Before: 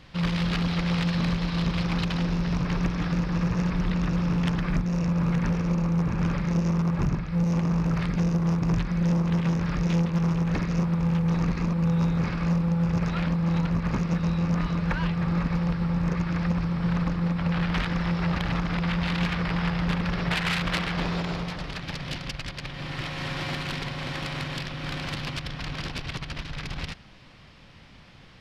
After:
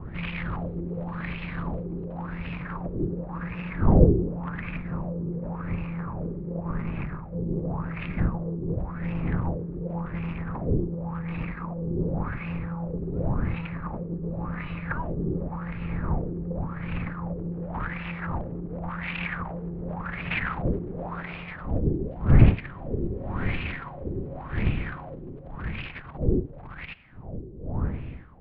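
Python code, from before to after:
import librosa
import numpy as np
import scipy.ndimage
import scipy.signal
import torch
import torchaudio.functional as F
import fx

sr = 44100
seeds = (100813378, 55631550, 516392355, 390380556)

y = fx.dmg_wind(x, sr, seeds[0], corner_hz=140.0, level_db=-20.0)
y = fx.filter_lfo_lowpass(y, sr, shape='sine', hz=0.9, low_hz=370.0, high_hz=2600.0, q=5.7)
y = scipy.signal.sosfilt(scipy.signal.butter(4, 4500.0, 'lowpass', fs=sr, output='sos'), y)
y = F.gain(torch.from_numpy(y), -9.5).numpy()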